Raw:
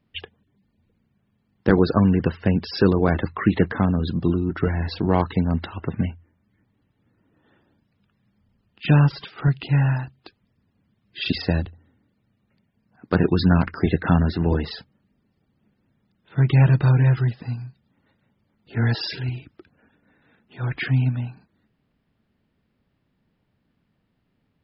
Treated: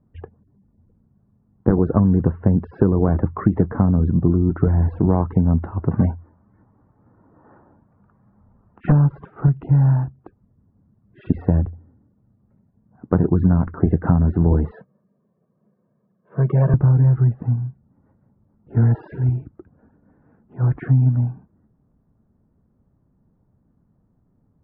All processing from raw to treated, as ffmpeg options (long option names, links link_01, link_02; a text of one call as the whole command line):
ffmpeg -i in.wav -filter_complex "[0:a]asettb=1/sr,asplit=3[link_01][link_02][link_03];[link_01]atrim=end=5.914[link_04];[link_02]atrim=start=5.91:end=8.92,asetpts=PTS-STARTPTS,afade=type=in:duration=0.004:curve=qsin,afade=type=out:start_time=3.006:duration=0.004:curve=qsin,equalizer=frequency=1100:width=0.51:gain=14,asoftclip=type=hard:threshold=-13dB[link_05];[link_03]atrim=start=8.916[link_06];[link_04][link_05]acrossfade=duration=0.004:curve1=hsin:curve2=qsin[link_07];[link_07][link_06]acrossfade=duration=0.004:curve1=qsin:curve2=hsin,asettb=1/sr,asplit=3[link_08][link_09][link_10];[link_08]atrim=end=14.724[link_11];[link_09]atrim=start=14.72:end=16.74,asetpts=PTS-STARTPTS,afade=type=in:duration=0.004:curve=qsin,afade=type=out:start_time=2.016:duration=0.004:curve=qsin,highpass=frequency=180:width=0.5412,highpass=frequency=180:width=1.3066,aecho=1:1:1.8:0.72,atrim=end_sample=89082[link_12];[link_10]atrim=start=16.736[link_13];[link_11][link_12]acrossfade=duration=0.004:curve1=hsin:curve2=qsin[link_14];[link_14][link_13]acrossfade=duration=0.004:curve1=qsin:curve2=hsin,lowpass=frequency=1200:width=0.5412,lowpass=frequency=1200:width=1.3066,lowshelf=frequency=220:gain=8.5,acompressor=threshold=-14dB:ratio=6,volume=2.5dB" out.wav